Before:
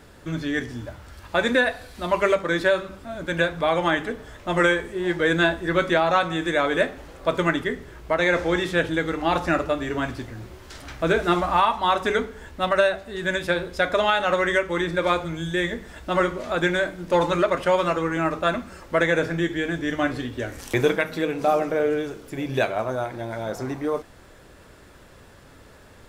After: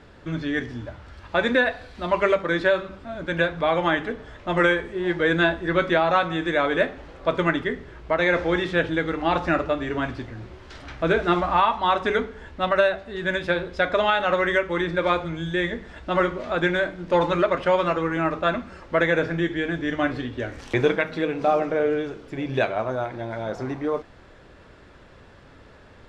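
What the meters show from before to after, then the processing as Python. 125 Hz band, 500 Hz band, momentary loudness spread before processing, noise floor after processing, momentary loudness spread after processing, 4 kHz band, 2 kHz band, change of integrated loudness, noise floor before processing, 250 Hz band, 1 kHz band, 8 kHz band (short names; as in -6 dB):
0.0 dB, 0.0 dB, 11 LU, -49 dBFS, 11 LU, -1.5 dB, 0.0 dB, 0.0 dB, -49 dBFS, 0.0 dB, 0.0 dB, n/a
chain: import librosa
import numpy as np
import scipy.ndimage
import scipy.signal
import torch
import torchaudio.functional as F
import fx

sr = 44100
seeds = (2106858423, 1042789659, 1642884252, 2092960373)

y = scipy.signal.sosfilt(scipy.signal.butter(2, 4200.0, 'lowpass', fs=sr, output='sos'), x)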